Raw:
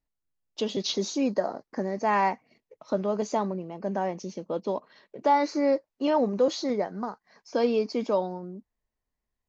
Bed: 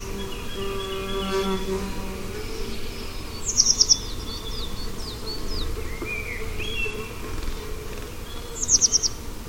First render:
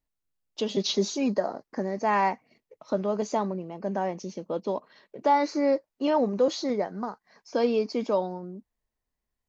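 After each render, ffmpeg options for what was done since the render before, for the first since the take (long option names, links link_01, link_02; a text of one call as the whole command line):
ffmpeg -i in.wav -filter_complex "[0:a]asettb=1/sr,asplit=3[link_01][link_02][link_03];[link_01]atrim=end=0.704[link_04];[link_02]atrim=start=0.7:end=1.38,asetpts=PTS-STARTPTS,afade=type=in:duration=0.004:curve=qsin,afade=type=out:start_time=0.676:duration=0.004:curve=qsin,aecho=1:1:4.9:0.59,atrim=end_sample=29988[link_05];[link_03]atrim=start=1.376[link_06];[link_04][link_05]acrossfade=duration=0.004:curve1=hsin:curve2=qsin[link_07];[link_07][link_06]acrossfade=duration=0.004:curve1=qsin:curve2=hsin" out.wav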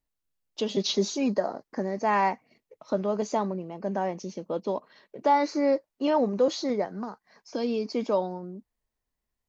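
ffmpeg -i in.wav -filter_complex "[0:a]asettb=1/sr,asplit=3[link_01][link_02][link_03];[link_01]atrim=end=6.854[link_04];[link_02]atrim=start=6.85:end=7.9,asetpts=PTS-STARTPTS,afade=type=in:duration=0.004:curve=qsin,afade=type=out:start_time=1.046:duration=0.004:curve=qsin,acrossover=split=350|3000[link_05][link_06][link_07];[link_06]acompressor=threshold=-33dB:ratio=6:attack=3.2:release=140:knee=2.83:detection=peak[link_08];[link_05][link_08][link_07]amix=inputs=3:normalize=0[link_09];[link_03]atrim=start=7.896[link_10];[link_04][link_09]acrossfade=duration=0.004:curve1=hsin:curve2=qsin[link_11];[link_11][link_10]acrossfade=duration=0.004:curve1=qsin:curve2=hsin" out.wav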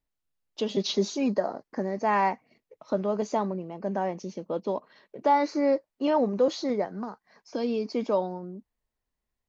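ffmpeg -i in.wav -af "highshelf=frequency=5400:gain=-6" out.wav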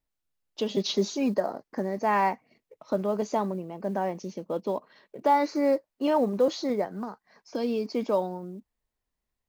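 ffmpeg -i in.wav -af "acrusher=bits=9:mode=log:mix=0:aa=0.000001" out.wav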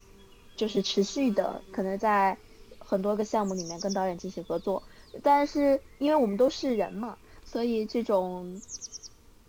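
ffmpeg -i in.wav -i bed.wav -filter_complex "[1:a]volume=-22.5dB[link_01];[0:a][link_01]amix=inputs=2:normalize=0" out.wav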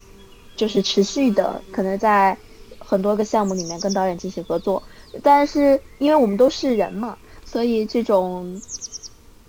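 ffmpeg -i in.wav -af "volume=8.5dB" out.wav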